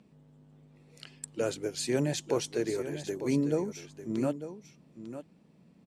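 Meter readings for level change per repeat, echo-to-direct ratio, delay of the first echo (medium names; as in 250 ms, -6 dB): no regular repeats, -11.5 dB, 899 ms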